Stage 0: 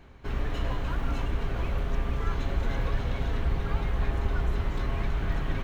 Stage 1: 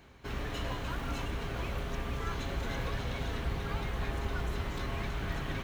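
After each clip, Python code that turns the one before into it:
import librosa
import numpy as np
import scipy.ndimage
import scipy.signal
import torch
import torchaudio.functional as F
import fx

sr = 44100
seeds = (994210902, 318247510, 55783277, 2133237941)

y = fx.highpass(x, sr, hz=77.0, slope=6)
y = fx.high_shelf(y, sr, hz=3200.0, db=8.5)
y = y * librosa.db_to_amplitude(-3.0)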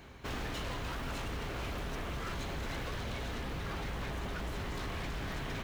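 y = fx.rider(x, sr, range_db=10, speed_s=0.5)
y = 10.0 ** (-33.0 / 20.0) * (np.abs((y / 10.0 ** (-33.0 / 20.0) + 3.0) % 4.0 - 2.0) - 1.0)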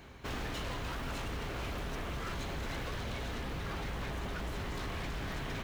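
y = x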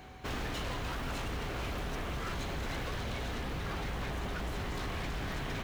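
y = x + 10.0 ** (-57.0 / 20.0) * np.sin(2.0 * np.pi * 750.0 * np.arange(len(x)) / sr)
y = y * librosa.db_to_amplitude(1.5)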